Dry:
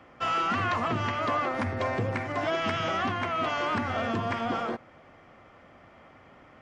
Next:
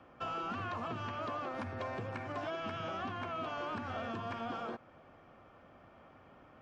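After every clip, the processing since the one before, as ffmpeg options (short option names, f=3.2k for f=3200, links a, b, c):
-filter_complex "[0:a]highshelf=f=4.4k:g=-9,bandreject=f=2k:w=5.7,acrossover=split=870|2600[a][b][c];[a]acompressor=threshold=-36dB:ratio=4[d];[b]acompressor=threshold=-39dB:ratio=4[e];[c]acompressor=threshold=-49dB:ratio=4[f];[d][e][f]amix=inputs=3:normalize=0,volume=-4.5dB"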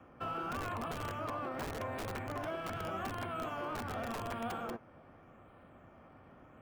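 -filter_complex "[0:a]acrossover=split=370|3800[a][b][c];[a]aeval=exprs='(mod(100*val(0)+1,2)-1)/100':c=same[d];[b]flanger=delay=7.7:depth=10:regen=57:speed=1.7:shape=sinusoidal[e];[c]acrusher=samples=10:mix=1:aa=0.000001:lfo=1:lforange=6:lforate=0.85[f];[d][e][f]amix=inputs=3:normalize=0,volume=3.5dB"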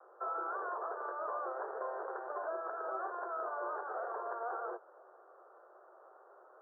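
-af "asuperpass=centerf=760:order=20:qfactor=0.62,volume=1.5dB"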